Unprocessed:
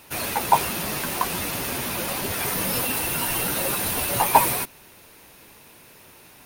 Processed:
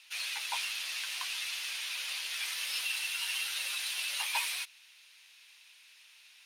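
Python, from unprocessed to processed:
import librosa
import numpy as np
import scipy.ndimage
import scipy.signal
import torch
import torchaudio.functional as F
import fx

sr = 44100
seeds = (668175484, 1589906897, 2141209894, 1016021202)

y = fx.ladder_bandpass(x, sr, hz=3800.0, resonance_pct=25)
y = y * 10.0 ** (8.0 / 20.0)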